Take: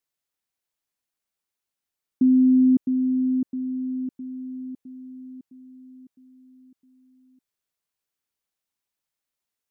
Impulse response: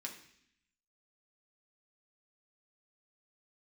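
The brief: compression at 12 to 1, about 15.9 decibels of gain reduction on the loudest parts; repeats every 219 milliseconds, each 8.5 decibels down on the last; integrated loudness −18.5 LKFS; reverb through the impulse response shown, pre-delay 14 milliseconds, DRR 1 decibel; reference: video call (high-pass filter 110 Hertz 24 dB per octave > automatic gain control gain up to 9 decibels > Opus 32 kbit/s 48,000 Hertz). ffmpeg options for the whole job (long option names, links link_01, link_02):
-filter_complex "[0:a]acompressor=threshold=-31dB:ratio=12,aecho=1:1:219|438|657|876:0.376|0.143|0.0543|0.0206,asplit=2[link_01][link_02];[1:a]atrim=start_sample=2205,adelay=14[link_03];[link_02][link_03]afir=irnorm=-1:irlink=0,volume=1dB[link_04];[link_01][link_04]amix=inputs=2:normalize=0,highpass=frequency=110:width=0.5412,highpass=frequency=110:width=1.3066,dynaudnorm=maxgain=9dB,volume=19.5dB" -ar 48000 -c:a libopus -b:a 32k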